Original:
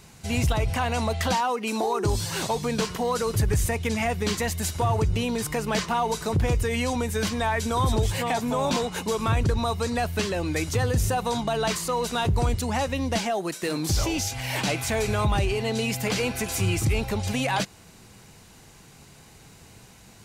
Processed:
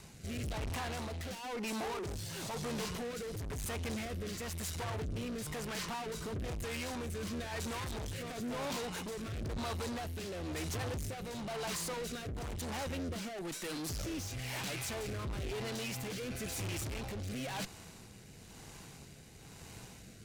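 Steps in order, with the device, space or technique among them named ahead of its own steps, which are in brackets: overdriven rotary cabinet (valve stage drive 38 dB, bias 0.55; rotary cabinet horn 1 Hz); trim +2 dB

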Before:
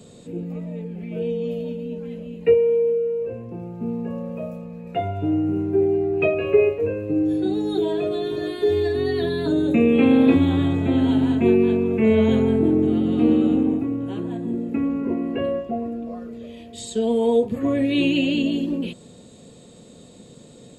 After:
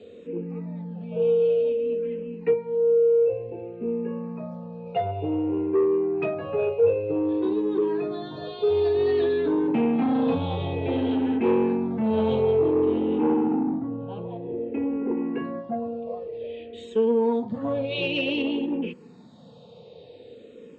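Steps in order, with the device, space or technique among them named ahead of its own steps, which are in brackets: 13.18–15.17 s: distance through air 290 m; barber-pole phaser into a guitar amplifier (barber-pole phaser -0.54 Hz; saturation -18 dBFS, distortion -14 dB; cabinet simulation 89–4500 Hz, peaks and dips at 470 Hz +10 dB, 870 Hz +7 dB, 2.6 kHz +4 dB); trim -1.5 dB

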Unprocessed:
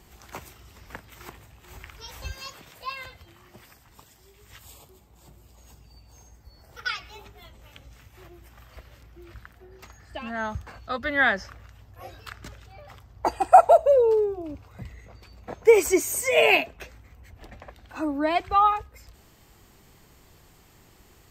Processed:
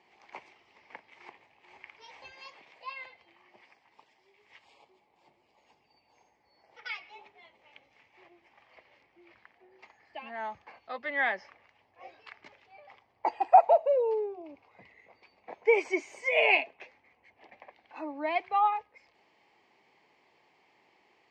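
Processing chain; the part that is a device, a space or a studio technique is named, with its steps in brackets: phone earpiece (cabinet simulation 380–4400 Hz, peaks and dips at 860 Hz +6 dB, 1.4 kHz -10 dB, 2.2 kHz +8 dB, 3.7 kHz -6 dB); trim -7 dB

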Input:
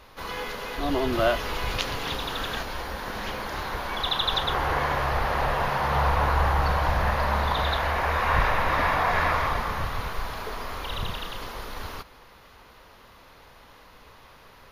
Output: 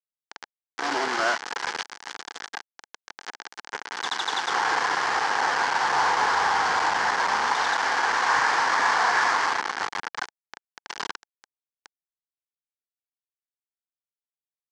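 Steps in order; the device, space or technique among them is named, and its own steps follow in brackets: 1.76–2.83 s: bass shelf 300 Hz -3.5 dB; hand-held game console (bit crusher 4-bit; cabinet simulation 400–6000 Hz, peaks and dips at 590 Hz -10 dB, 850 Hz +6 dB, 1.6 kHz +6 dB, 2.6 kHz -6 dB, 3.7 kHz -6 dB)

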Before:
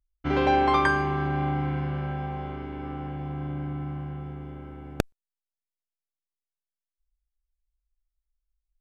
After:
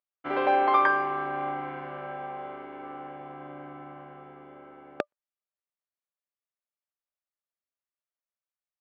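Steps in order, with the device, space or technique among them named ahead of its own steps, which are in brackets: tin-can telephone (band-pass 460–2400 Hz; small resonant body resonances 590/1200 Hz, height 8 dB, ringing for 70 ms)

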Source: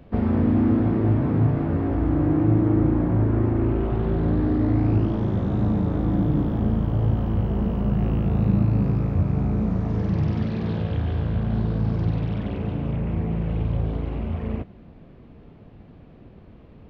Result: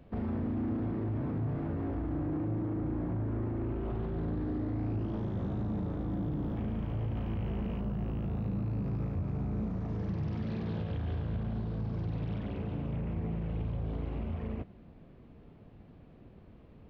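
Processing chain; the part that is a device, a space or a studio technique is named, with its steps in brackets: 6.56–7.80 s: peaking EQ 2.4 kHz +10 dB 0.72 oct; soft clipper into limiter (saturation -12.5 dBFS, distortion -21 dB; peak limiter -20 dBFS, peak gain reduction 6.5 dB); trim -7.5 dB

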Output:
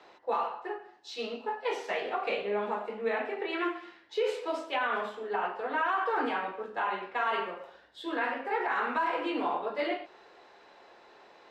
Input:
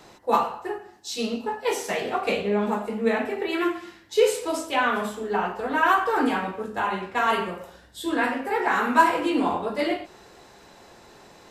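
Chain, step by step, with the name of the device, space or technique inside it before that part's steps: DJ mixer with the lows and highs turned down (three-band isolator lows -19 dB, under 330 Hz, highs -24 dB, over 4.3 kHz; peak limiter -16.5 dBFS, peak gain reduction 11 dB); trim -4 dB

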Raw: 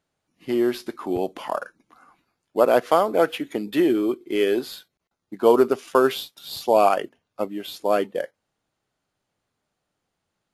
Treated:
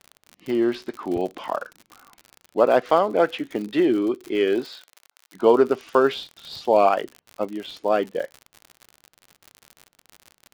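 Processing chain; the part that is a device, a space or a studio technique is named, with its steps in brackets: lo-fi chain (low-pass 4.5 kHz 12 dB/octave; wow and flutter; crackle 61 per s -30 dBFS); 4.64–5.34 s: high-pass 330 Hz -> 1.1 kHz 12 dB/octave

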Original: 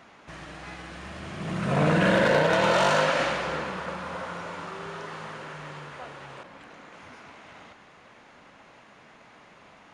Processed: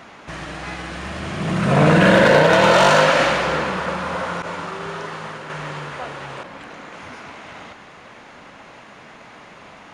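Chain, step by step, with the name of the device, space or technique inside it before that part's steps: parallel distortion (in parallel at -11 dB: hard clipper -31 dBFS, distortion -3 dB); 4.42–5.50 s: on the sum: expander -32 dBFS; trim +8 dB

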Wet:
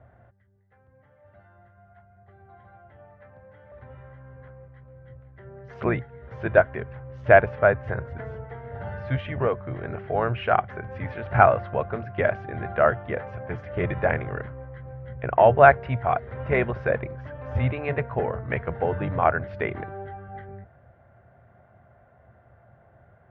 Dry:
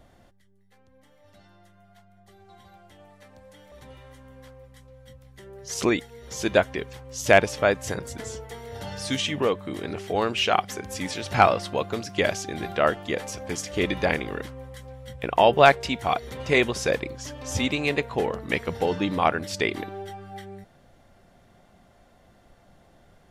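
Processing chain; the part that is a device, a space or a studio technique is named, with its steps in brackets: sub-octave bass pedal (octave divider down 1 oct, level -4 dB; cabinet simulation 65–2000 Hz, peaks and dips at 78 Hz +7 dB, 120 Hz +10 dB, 190 Hz -4 dB, 290 Hz -8 dB, 640 Hz +6 dB, 1.5 kHz +6 dB); trim -1.5 dB

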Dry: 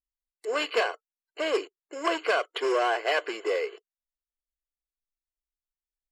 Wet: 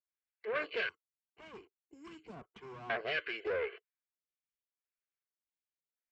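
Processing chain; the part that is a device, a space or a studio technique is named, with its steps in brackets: vibe pedal into a guitar amplifier (lamp-driven phase shifter 0.85 Hz; valve stage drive 30 dB, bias 0.55; cabinet simulation 93–3700 Hz, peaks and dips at 110 Hz -8 dB, 290 Hz -6 dB, 870 Hz -9 dB, 1.6 kHz +7 dB, 2.3 kHz +7 dB); 0.89–2.90 s: FFT filter 280 Hz 0 dB, 580 Hz -24 dB, 870 Hz -4 dB, 1.6 kHz -26 dB, 4.4 kHz -17 dB, 7.6 kHz +6 dB

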